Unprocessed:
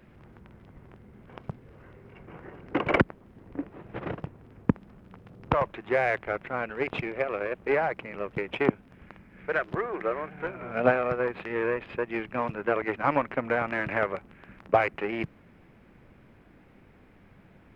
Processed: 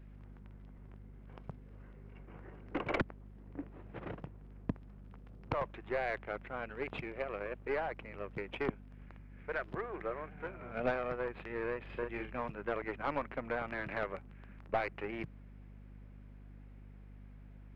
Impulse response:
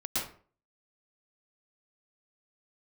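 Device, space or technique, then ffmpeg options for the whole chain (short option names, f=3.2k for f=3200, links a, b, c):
valve amplifier with mains hum: -filter_complex "[0:a]aeval=exprs='(tanh(5.62*val(0)+0.35)-tanh(0.35))/5.62':c=same,aeval=exprs='val(0)+0.00708*(sin(2*PI*50*n/s)+sin(2*PI*2*50*n/s)/2+sin(2*PI*3*50*n/s)/3+sin(2*PI*4*50*n/s)/4+sin(2*PI*5*50*n/s)/5)':c=same,asettb=1/sr,asplit=3[a][b][c];[a]atrim=end=11.804[d];[b]atrim=start=11.8:end=12.38,asetpts=PTS-STARTPTS,afade=t=in:d=0.004:c=qsin,afade=t=out:st=0.576:d=0.004:c=qsin,asplit=2[e][f];[f]adelay=42,volume=-4.5dB[g];[e][g]amix=inputs=2:normalize=0,atrim=end_sample=25578[h];[c]atrim=start=12.376[i];[d][h]acrossfade=d=0.004:c1=hsin:c2=qsin[j];[j][i]acrossfade=d=0.004:c1=qsin:c2=hsin,volume=-8.5dB"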